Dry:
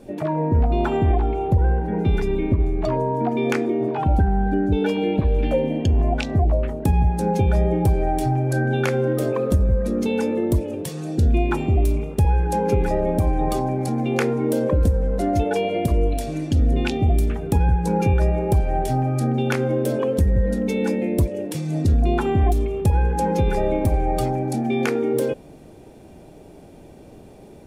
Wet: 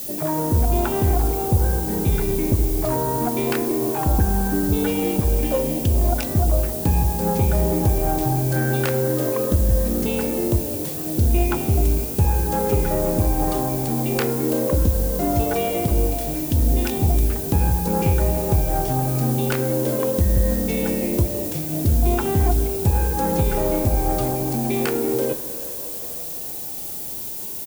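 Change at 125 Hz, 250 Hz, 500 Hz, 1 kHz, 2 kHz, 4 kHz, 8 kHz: -0.5 dB, -0.5 dB, -0.5 dB, -0.5 dB, -1.0 dB, +2.5 dB, +10.0 dB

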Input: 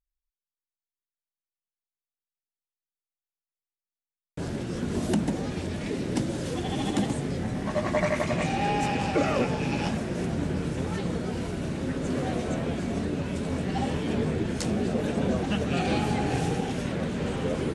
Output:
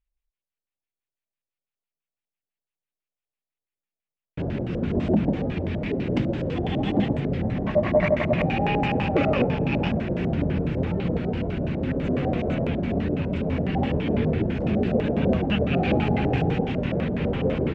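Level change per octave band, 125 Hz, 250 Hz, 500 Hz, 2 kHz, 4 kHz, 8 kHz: +5.0 dB, +4.0 dB, +5.0 dB, +2.5 dB, -0.5 dB, under -20 dB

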